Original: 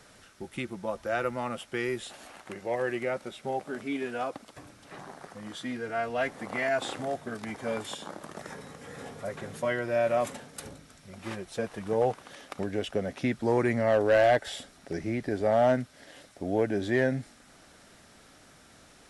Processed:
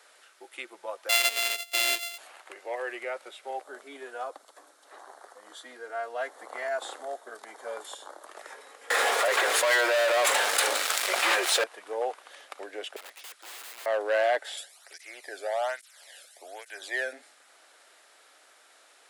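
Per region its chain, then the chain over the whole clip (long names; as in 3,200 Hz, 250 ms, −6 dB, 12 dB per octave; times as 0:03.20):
0:01.09–0:02.18: samples sorted by size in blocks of 64 samples + high shelf with overshoot 1,800 Hz +11 dB, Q 1.5
0:03.61–0:08.27: parametric band 2,500 Hz −11 dB 0.7 octaves + notch filter 4,900 Hz, Q 18
0:08.90–0:11.64: meter weighting curve A + leveller curve on the samples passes 5 + envelope flattener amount 70%
0:12.96–0:13.86: high-pass filter 1,300 Hz 6 dB per octave + wrap-around overflow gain 37.5 dB
0:14.57–0:17.13: spectral tilt +3.5 dB per octave + through-zero flanger with one copy inverted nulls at 1.2 Hz, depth 1.1 ms
whole clip: Bessel high-pass filter 630 Hz, order 8; parametric band 5,700 Hz −5 dB 0.28 octaves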